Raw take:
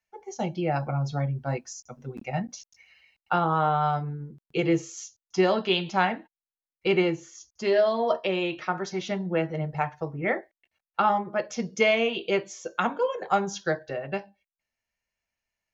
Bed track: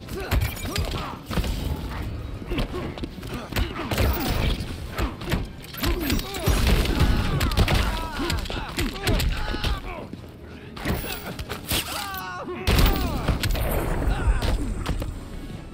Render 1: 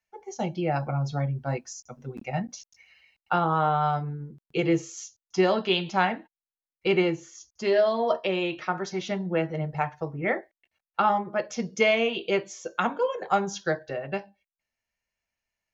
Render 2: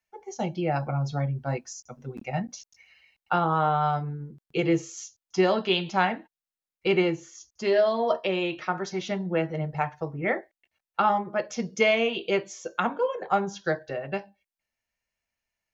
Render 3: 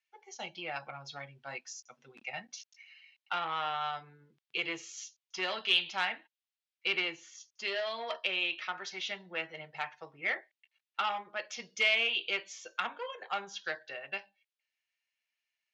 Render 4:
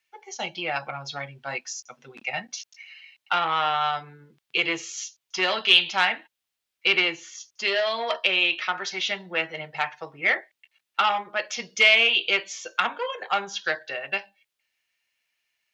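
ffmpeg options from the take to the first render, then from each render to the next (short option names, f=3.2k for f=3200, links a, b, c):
-af anull
-filter_complex "[0:a]asettb=1/sr,asplit=3[a][b][c];[a]atrim=end=12.804[d];[b]atrim=start=12.8:end=13.64,asetpts=PTS-STARTPTS,afade=t=in:d=0.004:c=qsin,afade=t=out:st=0.836:d=0.004:c=qsin,highshelf=f=4.1k:g=-9.5[e];[c]atrim=start=13.636[f];[d][e]acrossfade=d=0.004:c1=hsin:c2=qsin[g];[g][f]acrossfade=d=0.004:c1=qsin:c2=hsin"
-af "aeval=exprs='0.316*(cos(1*acos(clip(val(0)/0.316,-1,1)))-cos(1*PI/2))+0.0282*(cos(5*acos(clip(val(0)/0.316,-1,1)))-cos(5*PI/2))':c=same,bandpass=f=3k:t=q:w=1.4:csg=0"
-af "volume=10.5dB"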